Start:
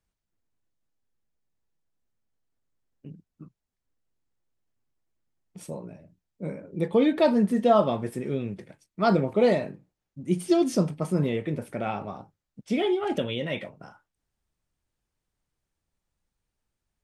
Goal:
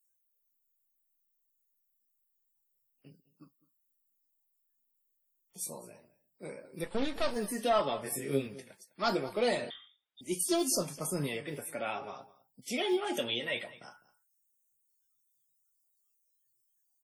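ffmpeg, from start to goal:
-filter_complex "[0:a]aemphasis=mode=production:type=riaa,acrossover=split=300|2000[s0][s1][s2];[s0]acrusher=samples=9:mix=1:aa=0.000001[s3];[s3][s1][s2]amix=inputs=3:normalize=0,asoftclip=type=tanh:threshold=0.168,flanger=delay=7:depth=1.5:regen=61:speed=0.26:shape=sinusoidal,asplit=3[s4][s5][s6];[s4]afade=t=out:st=6.83:d=0.02[s7];[s5]aeval=exprs='max(val(0),0)':c=same,afade=t=in:st=6.83:d=0.02,afade=t=out:st=7.35:d=0.02[s8];[s6]afade=t=in:st=7.35:d=0.02[s9];[s7][s8][s9]amix=inputs=3:normalize=0,aphaser=in_gain=1:out_gain=1:delay=3.7:decay=0.28:speed=0.72:type=triangular,asettb=1/sr,asplit=3[s10][s11][s12];[s10]atrim=end=8.034[s13];[s11]atrim=start=8.03:end=8.47,asetpts=PTS-STARTPTS,afade=t=in:d=0.004:c=qsin,afade=t=out:st=0.436:d=0.004:c=qsin,asplit=2[s14][s15];[s15]adelay=22,volume=0.668[s16];[s14][s16]amix=inputs=2:normalize=0,atrim=end_sample=19404[s17];[s12]atrim=start=8.466[s18];[s13][s17]acrossfade=d=0.004:c1=hsin:c2=qsin[s19];[s19][s18]acrossfade=d=0.004:c1=qsin:c2=hsin,aecho=1:1:206:0.112,asettb=1/sr,asplit=3[s20][s21][s22];[s20]atrim=end=9.704[s23];[s21]atrim=start=9.7:end=10.21,asetpts=PTS-STARTPTS,afade=t=in:d=0.004:c=qsin,afade=t=out:st=0.506:d=0.004:c=qsin,lowpass=f=3200:t=q:w=0.5098,lowpass=f=3200:t=q:w=0.6013,lowpass=f=3200:t=q:w=0.9,lowpass=f=3200:t=q:w=2.563,afreqshift=-3800[s24];[s22]atrim=start=10.206[s25];[s23][s24]acrossfade=d=0.004:c1=hsin:c2=qsin[s26];[s26][s25]acrossfade=d=0.004:c1=qsin:c2=hsin" -ar 48000 -c:a wmav2 -b:a 32k

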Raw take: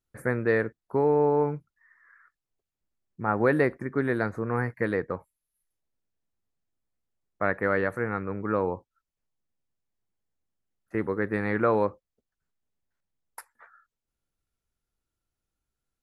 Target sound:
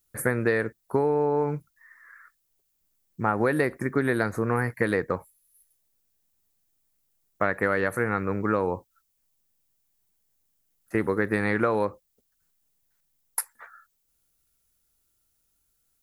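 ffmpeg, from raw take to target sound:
-af "aemphasis=mode=production:type=75kf,acompressor=threshold=0.0631:ratio=10,volume=1.78"

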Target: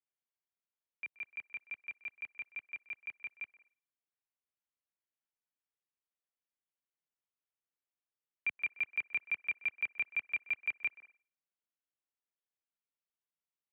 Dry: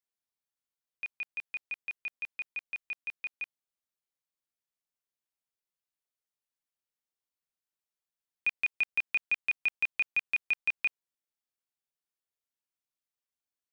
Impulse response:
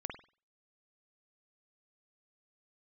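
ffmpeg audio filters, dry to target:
-filter_complex "[0:a]asplit=2[s0][s1];[s1]acrossover=split=330 2500:gain=0.0891 1 0.0708[s2][s3][s4];[s2][s3][s4]amix=inputs=3:normalize=0[s5];[1:a]atrim=start_sample=2205,adelay=127[s6];[s5][s6]afir=irnorm=-1:irlink=0,volume=0.188[s7];[s0][s7]amix=inputs=2:normalize=0,highpass=f=170:t=q:w=0.5412,highpass=f=170:t=q:w=1.307,lowpass=f=3300:t=q:w=0.5176,lowpass=f=3300:t=q:w=0.7071,lowpass=f=3300:t=q:w=1.932,afreqshift=-88,volume=0.562"

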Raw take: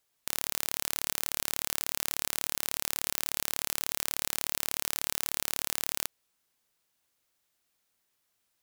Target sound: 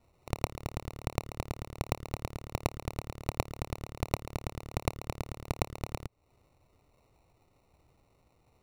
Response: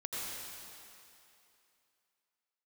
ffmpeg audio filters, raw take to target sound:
-filter_complex "[0:a]acrossover=split=620|4100[s0][s1][s2];[s0]acompressor=threshold=0.00316:ratio=4[s3];[s1]acompressor=threshold=0.002:ratio=4[s4];[s2]acompressor=threshold=0.00891:ratio=4[s5];[s3][s4][s5]amix=inputs=3:normalize=0,acrusher=samples=27:mix=1:aa=0.000001,lowshelf=f=150:t=q:w=1.5:g=6.5,volume=2.37"

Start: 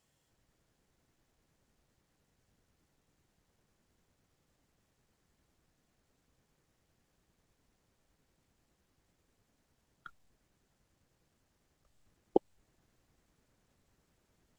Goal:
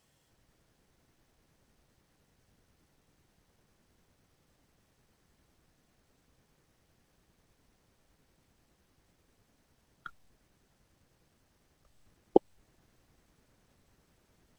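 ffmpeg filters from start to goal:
-af "bandreject=f=7100:w=12,volume=1.88"

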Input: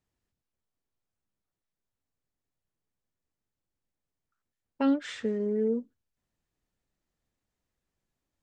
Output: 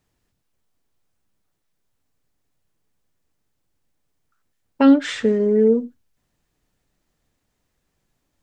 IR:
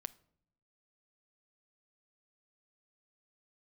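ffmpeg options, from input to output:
-filter_complex "[0:a]asplit=2[s0][s1];[1:a]atrim=start_sample=2205,atrim=end_sample=4410[s2];[s1][s2]afir=irnorm=-1:irlink=0,volume=6.31[s3];[s0][s3]amix=inputs=2:normalize=0,volume=0.75"

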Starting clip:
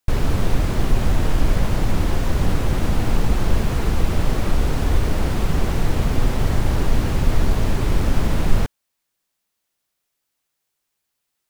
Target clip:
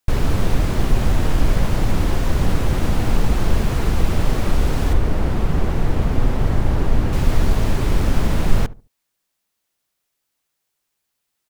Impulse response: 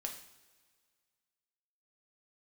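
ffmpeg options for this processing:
-filter_complex "[0:a]asettb=1/sr,asplit=3[s0][s1][s2];[s0]atrim=end=4.934[s3];[s1]atrim=start=4.93:end=7.13,asetpts=PTS-STARTPTS,afade=t=in:d=0.004:c=qsin,afade=t=out:st=2.196:d=0.004:c=qsin,highshelf=f=2700:g=-9[s4];[s2]atrim=start=7.126[s5];[s3][s4]acrossfade=d=0.004:c1=hsin:c2=qsin[s6];[s6][s5]acrossfade=d=0.004:c1=qsin:c2=hsin,asplit=2[s7][s8];[s8]adelay=72,lowpass=f=830:p=1,volume=0.141,asplit=2[s9][s10];[s10]adelay=72,lowpass=f=830:p=1,volume=0.27,asplit=2[s11][s12];[s12]adelay=72,lowpass=f=830:p=1,volume=0.27[s13];[s7][s9][s11][s13]amix=inputs=4:normalize=0,volume=1.12"

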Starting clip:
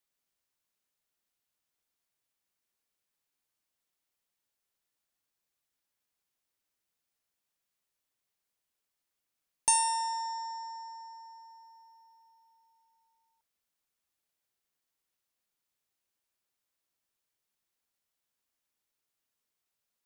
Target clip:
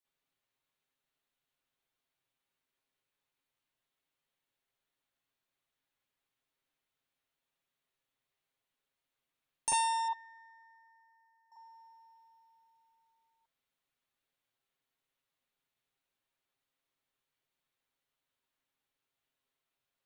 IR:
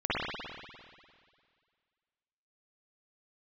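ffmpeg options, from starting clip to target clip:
-filter_complex "[0:a]asettb=1/sr,asplit=3[s0][s1][s2];[s0]atrim=end=10.084[s3];[s1]atrim=start=10.08:end=11.52,asetpts=PTS-STARTPTS,afade=t=in:d=0.004:c=qsin,afade=t=out:st=1.436:d=0.004:c=qsin,bandpass=f=1700:t=q:w=8.1:csg=0[s4];[s2]atrim=start=11.516[s5];[s3][s4]acrossfade=d=0.004:c1=hsin:c2=qsin[s6];[s6][s5]acrossfade=d=0.004:c1=qsin:c2=hsin[s7];[1:a]atrim=start_sample=2205,atrim=end_sample=3528,asetrate=52920,aresample=44100[s8];[s7][s8]afir=irnorm=-1:irlink=0,volume=0.596"

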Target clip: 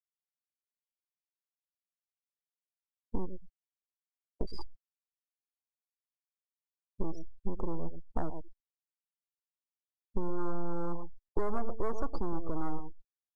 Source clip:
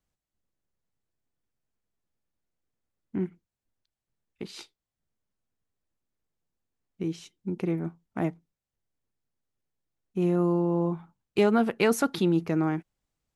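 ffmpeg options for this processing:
-filter_complex "[0:a]aeval=exprs='if(lt(val(0),0),0.251*val(0),val(0))':c=same,asuperstop=centerf=2400:order=20:qfactor=0.75,asplit=2[s0][s1];[s1]aecho=0:1:111|222:0.2|0.0319[s2];[s0][s2]amix=inputs=2:normalize=0,acrossover=split=3300[s3][s4];[s4]acompressor=threshold=0.00126:ratio=4:attack=1:release=60[s5];[s3][s5]amix=inputs=2:normalize=0,asoftclip=type=tanh:threshold=0.0708,equalizer=f=190:t=o:w=2.8:g=-9.5,afftfilt=real='re*gte(hypot(re,im),0.00447)':imag='im*gte(hypot(re,im),0.00447)':win_size=1024:overlap=0.75,acompressor=threshold=0.00316:ratio=4,asubboost=boost=3:cutoff=78,volume=7.08" -ar 22050 -c:a adpcm_ima_wav

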